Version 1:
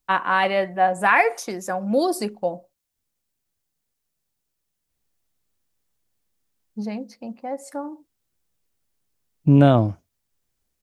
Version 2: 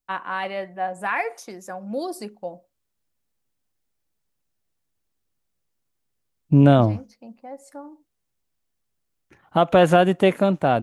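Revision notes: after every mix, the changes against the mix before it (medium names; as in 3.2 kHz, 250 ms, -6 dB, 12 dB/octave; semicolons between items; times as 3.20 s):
first voice -8.0 dB; second voice: entry -2.95 s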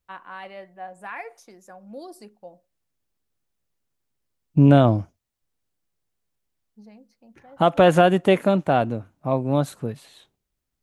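first voice -10.5 dB; second voice: entry -1.95 s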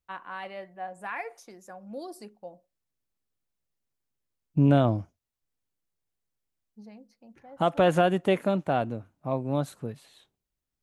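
second voice -6.5 dB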